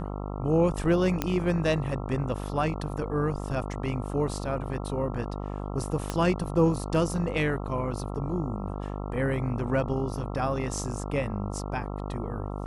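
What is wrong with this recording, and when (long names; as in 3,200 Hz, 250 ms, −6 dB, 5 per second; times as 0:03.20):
mains buzz 50 Hz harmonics 27 −34 dBFS
0:01.22: click −11 dBFS
0:06.10: click −15 dBFS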